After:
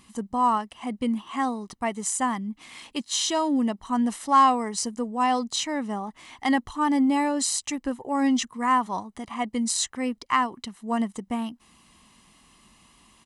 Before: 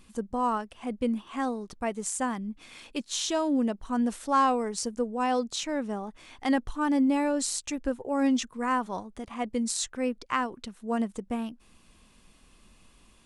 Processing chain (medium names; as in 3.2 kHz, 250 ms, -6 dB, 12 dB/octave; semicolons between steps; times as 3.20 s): in parallel at -11.5 dB: saturation -20.5 dBFS, distortion -17 dB; on the sum: high-pass 200 Hz 6 dB/octave; comb 1 ms, depth 51%; trim +2 dB